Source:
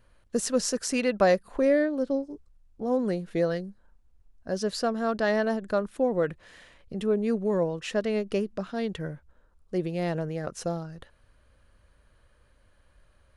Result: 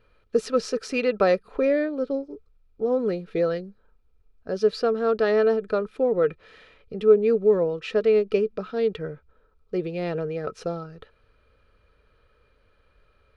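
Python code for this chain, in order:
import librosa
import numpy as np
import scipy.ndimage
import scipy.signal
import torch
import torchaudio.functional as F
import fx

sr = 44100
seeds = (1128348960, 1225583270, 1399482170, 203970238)

y = fx.high_shelf_res(x, sr, hz=5800.0, db=-10.0, q=1.5)
y = fx.small_body(y, sr, hz=(440.0, 1300.0, 2400.0), ring_ms=50, db=14)
y = y * 10.0 ** (-2.0 / 20.0)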